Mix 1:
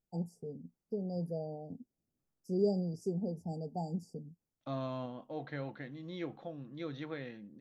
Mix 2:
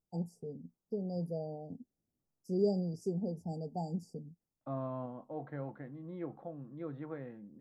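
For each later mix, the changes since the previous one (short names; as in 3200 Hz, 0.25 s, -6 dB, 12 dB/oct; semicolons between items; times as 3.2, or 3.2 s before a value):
second voice: add Chebyshev band-pass 110–1100 Hz, order 2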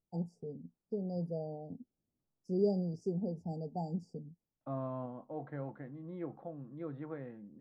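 master: add air absorption 100 m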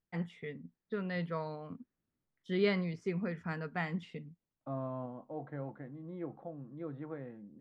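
first voice: remove brick-wall FIR band-stop 890–4600 Hz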